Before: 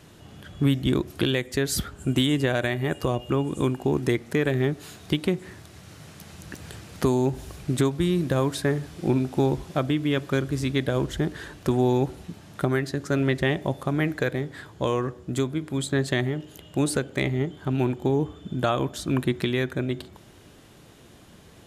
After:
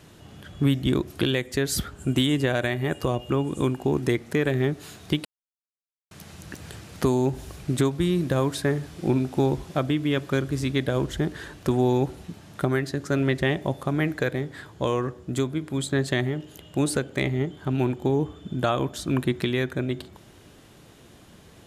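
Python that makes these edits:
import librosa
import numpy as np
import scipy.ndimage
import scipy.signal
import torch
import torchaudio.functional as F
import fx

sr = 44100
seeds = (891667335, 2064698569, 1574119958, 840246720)

y = fx.edit(x, sr, fx.silence(start_s=5.25, length_s=0.86), tone=tone)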